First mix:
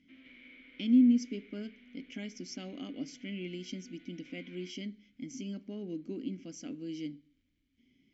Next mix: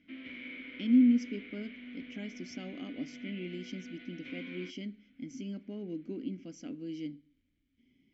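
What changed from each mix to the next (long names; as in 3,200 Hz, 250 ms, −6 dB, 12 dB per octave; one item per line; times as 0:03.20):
background +11.5 dB
master: add high-shelf EQ 5,500 Hz −12 dB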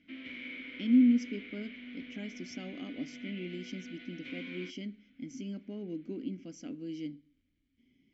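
speech: add high-shelf EQ 4,000 Hz −7.5 dB
master: add high-shelf EQ 5,500 Hz +12 dB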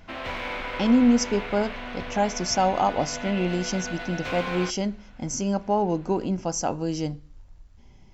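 master: remove formant filter i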